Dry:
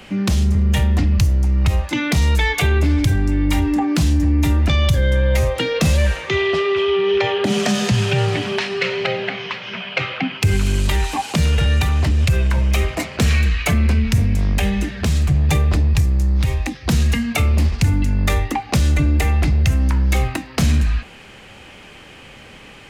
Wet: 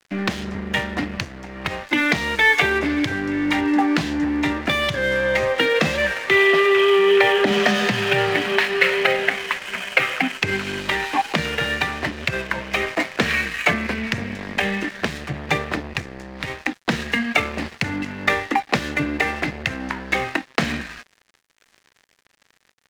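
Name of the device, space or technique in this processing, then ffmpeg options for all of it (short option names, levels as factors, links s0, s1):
pocket radio on a weak battery: -af "highpass=270,lowpass=3700,aeval=exprs='sgn(val(0))*max(abs(val(0))-0.0158,0)':c=same,equalizer=f=1800:t=o:w=0.55:g=6.5,volume=1.5"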